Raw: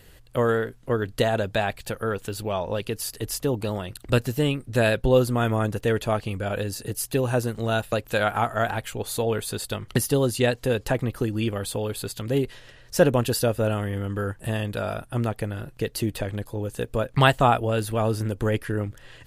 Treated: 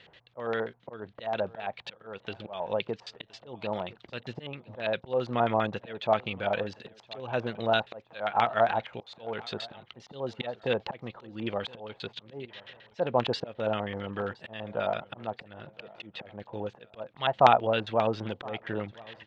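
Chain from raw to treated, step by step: auto swell 0.299 s; LFO low-pass square 7.5 Hz 850–3700 Hz; speaker cabinet 190–5900 Hz, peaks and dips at 280 Hz -8 dB, 420 Hz -4 dB, 2200 Hz +4 dB, 4700 Hz -6 dB; feedback echo 1.017 s, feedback 31%, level -23 dB; gain -2 dB

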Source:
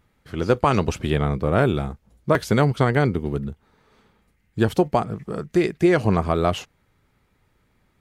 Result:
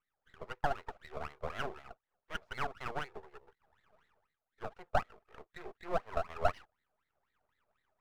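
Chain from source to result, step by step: steep high-pass 360 Hz 96 dB/oct; tilt -4 dB/oct; AGC gain up to 9 dB; added harmonics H 5 -30 dB, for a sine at -1 dBFS; wah 4 Hz 620–2000 Hz, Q 13; half-wave rectifier; gain -2.5 dB

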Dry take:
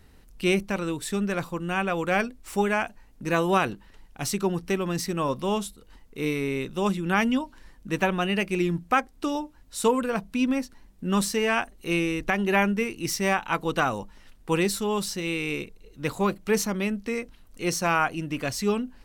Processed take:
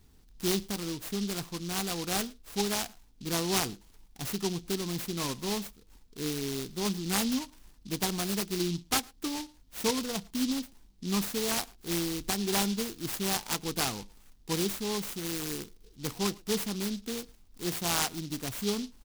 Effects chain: bell 560 Hz -11.5 dB 0.28 oct; speakerphone echo 0.11 s, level -23 dB; noise-modulated delay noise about 4200 Hz, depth 0.17 ms; gain -5.5 dB

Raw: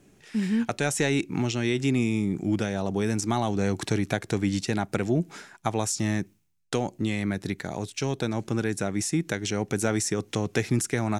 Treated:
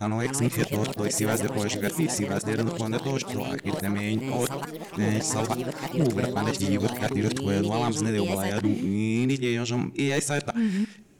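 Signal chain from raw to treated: whole clip reversed; hard clip -16.5 dBFS, distortion -22 dB; on a send at -21 dB: reverb, pre-delay 6 ms; on the sum: echoes that change speed 0.254 s, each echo +4 st, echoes 3, each echo -6 dB

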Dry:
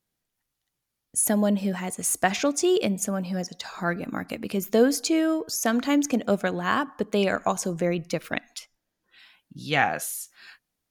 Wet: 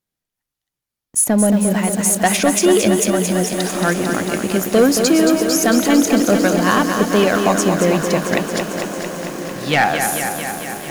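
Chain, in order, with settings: 1.24–1.74 high shelf 2200 Hz -8.5 dB; sample leveller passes 2; diffused feedback echo 1.421 s, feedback 56%, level -12 dB; lo-fi delay 0.224 s, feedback 80%, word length 6-bit, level -6 dB; gain +1.5 dB

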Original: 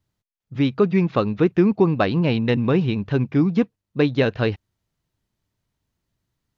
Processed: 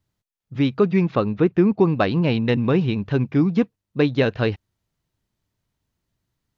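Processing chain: 1.15–1.79 high shelf 3300 Hz -7.5 dB

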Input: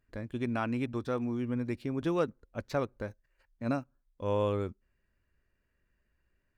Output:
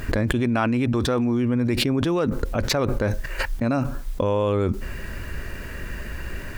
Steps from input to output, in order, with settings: fast leveller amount 100%; gain +4 dB

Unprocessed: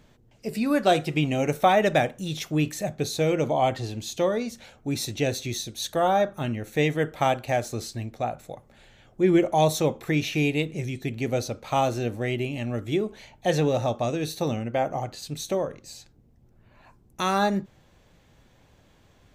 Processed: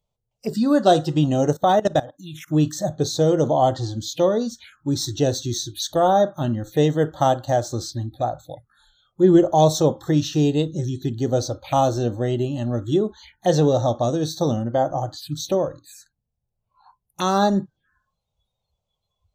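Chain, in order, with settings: 1.53–2.48 level quantiser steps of 20 dB; envelope phaser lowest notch 260 Hz, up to 2300 Hz, full sweep at -29.5 dBFS; spectral noise reduction 26 dB; gain +6 dB

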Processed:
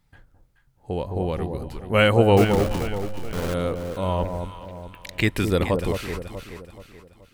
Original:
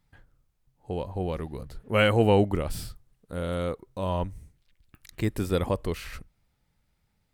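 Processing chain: 2.37–3.54 level-crossing sampler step -28.5 dBFS; 4.25–5.45 bell 2600 Hz +12.5 dB 1.8 oct; echo with dull and thin repeats by turns 0.214 s, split 950 Hz, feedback 63%, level -5.5 dB; gain +4 dB

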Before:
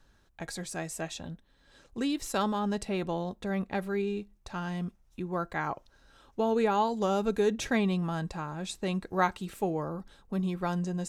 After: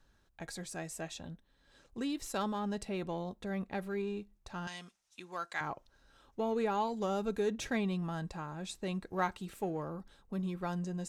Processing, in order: 4.67–5.61 weighting filter ITU-R 468; in parallel at -12 dB: overloaded stage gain 31.5 dB; on the sum: gain -7 dB

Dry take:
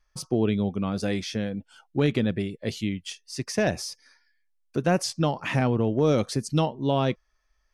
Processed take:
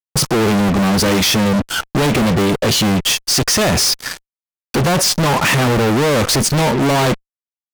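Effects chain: in parallel at +2 dB: compressor 10:1, threshold -37 dBFS, peak gain reduction 19 dB; on the sum: fuzz box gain 47 dB, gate -49 dBFS

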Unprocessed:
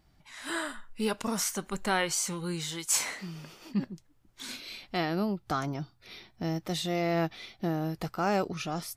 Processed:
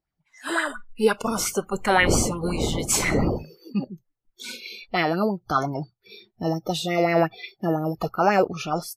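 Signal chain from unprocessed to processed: 1.23–3.42 wind noise 270 Hz -37 dBFS; spectral noise reduction 26 dB; LFO bell 5.7 Hz 420–2300 Hz +12 dB; gain +4 dB

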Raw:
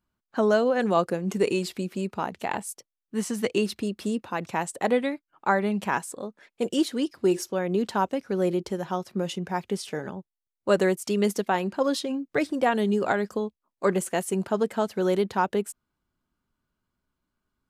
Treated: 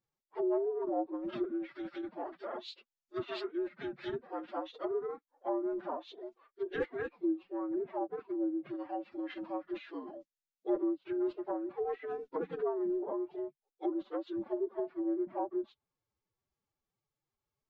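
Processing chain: inharmonic rescaling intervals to 76%; treble ducked by the level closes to 670 Hz, closed at -22.5 dBFS; formant-preserving pitch shift +9 st; gain -8 dB

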